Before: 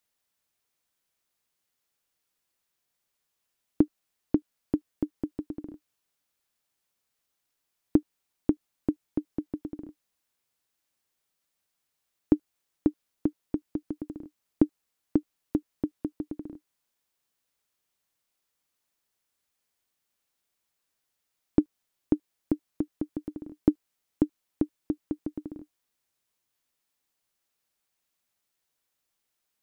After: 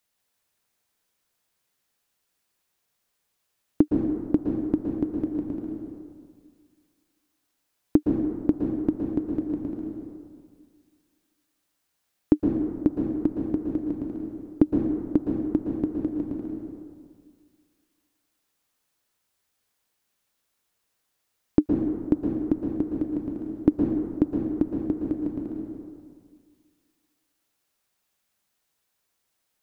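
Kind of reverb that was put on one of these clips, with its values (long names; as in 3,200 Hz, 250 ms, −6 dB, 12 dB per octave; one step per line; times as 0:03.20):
dense smooth reverb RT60 1.9 s, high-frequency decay 0.5×, pre-delay 105 ms, DRR 0.5 dB
level +2.5 dB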